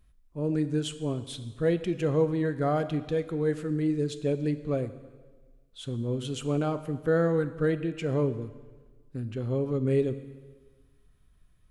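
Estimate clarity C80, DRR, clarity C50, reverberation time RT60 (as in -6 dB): 14.5 dB, 11.5 dB, 13.0 dB, 1.4 s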